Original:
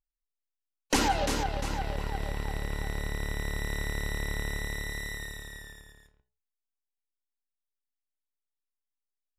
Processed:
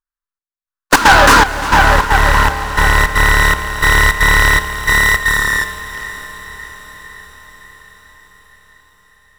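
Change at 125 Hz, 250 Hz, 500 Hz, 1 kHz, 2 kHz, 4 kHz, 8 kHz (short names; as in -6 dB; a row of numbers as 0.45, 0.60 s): +16.5, +14.0, +17.0, +23.0, +26.5, +19.5, +17.5 dB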